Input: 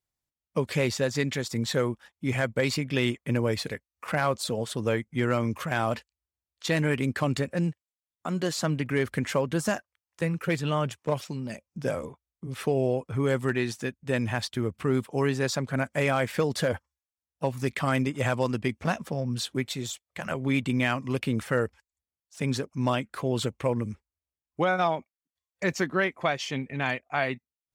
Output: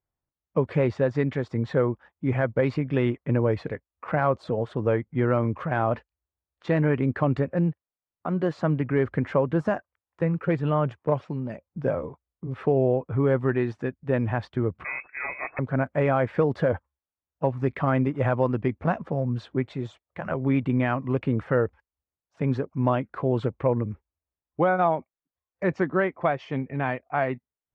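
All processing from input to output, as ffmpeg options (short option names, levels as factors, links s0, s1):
-filter_complex "[0:a]asettb=1/sr,asplit=3[s0][s1][s2];[s0]atrim=end=14.844[s3];[s1]atrim=start=14.84:end=15.59,asetpts=PTS-STARTPTS,afade=t=in:d=0.004:c=qsin,afade=t=out:st=0.746:d=0.004:c=qsin,aeval=exprs='val(0)*sin(2*PI*220*n/s)':c=same,acrusher=bits=4:mode=log:mix=0:aa=0.000001,lowpass=f=2200:t=q:w=0.5098,lowpass=f=2200:t=q:w=0.6013,lowpass=f=2200:t=q:w=0.9,lowpass=f=2200:t=q:w=2.563,afreqshift=-2600[s4];[s2]atrim=start=15.586[s5];[s3][s4]acrossfade=d=0.004:c1=hsin:c2=qsin[s6];[s6][s5]acrossfade=d=0.004:c1=qsin:c2=hsin,lowpass=1300,equalizer=f=220:t=o:w=0.29:g=-4,volume=1.58"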